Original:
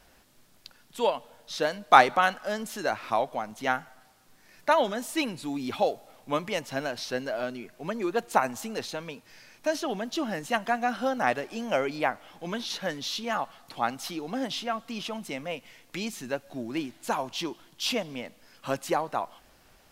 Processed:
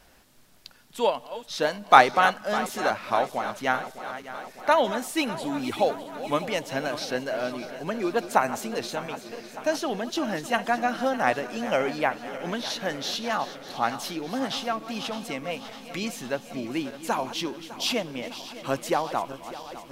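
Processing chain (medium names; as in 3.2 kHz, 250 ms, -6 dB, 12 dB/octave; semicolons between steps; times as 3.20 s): backward echo that repeats 302 ms, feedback 79%, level -13.5 dB; trim +2 dB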